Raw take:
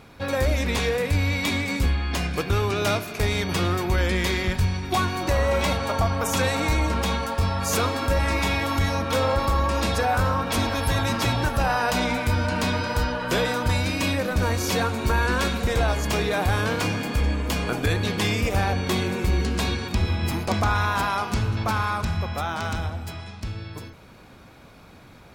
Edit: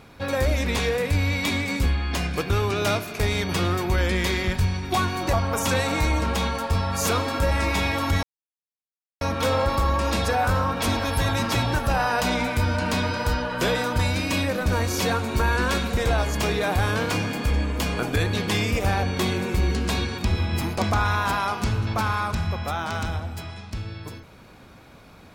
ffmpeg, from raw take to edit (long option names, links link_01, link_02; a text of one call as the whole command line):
ffmpeg -i in.wav -filter_complex "[0:a]asplit=3[link_01][link_02][link_03];[link_01]atrim=end=5.332[link_04];[link_02]atrim=start=6.008:end=8.91,asetpts=PTS-STARTPTS,afade=type=out:start_time=2.898:duration=0.004:curve=hsin,apad=pad_dur=0.98[link_05];[link_03]atrim=start=8.91,asetpts=PTS-STARTPTS,afade=type=in:duration=0.004:curve=hsin[link_06];[link_05][link_06]concat=n=2:v=0:a=1[link_07];[link_04][link_07]acrossfade=duration=0.004:curve1=hsin:curve2=hsin" out.wav